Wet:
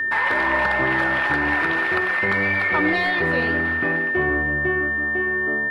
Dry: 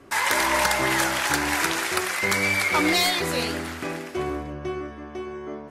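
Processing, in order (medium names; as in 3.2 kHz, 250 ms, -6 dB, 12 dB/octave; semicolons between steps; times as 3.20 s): compression 2.5:1, threshold -24 dBFS, peak gain reduction 5 dB; distance through air 450 m; short-mantissa float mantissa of 8-bit; whistle 1.8 kHz -27 dBFS; trim +6.5 dB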